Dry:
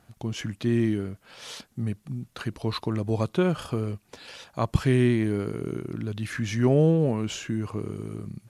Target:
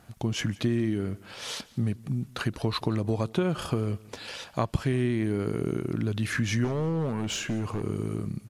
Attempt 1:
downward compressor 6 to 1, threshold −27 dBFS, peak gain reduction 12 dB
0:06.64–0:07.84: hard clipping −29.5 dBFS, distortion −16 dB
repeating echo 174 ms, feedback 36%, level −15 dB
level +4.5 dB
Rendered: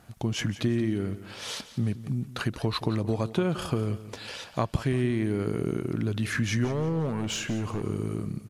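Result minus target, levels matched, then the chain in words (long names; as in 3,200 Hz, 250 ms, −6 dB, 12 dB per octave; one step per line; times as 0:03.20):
echo-to-direct +7.5 dB
downward compressor 6 to 1, threshold −27 dBFS, peak gain reduction 12 dB
0:06.64–0:07.84: hard clipping −29.5 dBFS, distortion −16 dB
repeating echo 174 ms, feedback 36%, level −22.5 dB
level +4.5 dB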